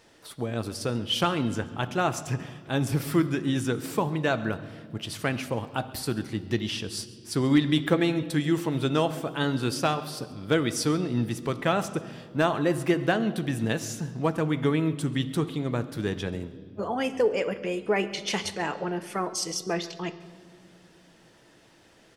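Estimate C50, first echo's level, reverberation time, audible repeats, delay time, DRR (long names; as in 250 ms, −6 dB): 14.0 dB, −22.0 dB, 2.0 s, 1, 136 ms, 10.0 dB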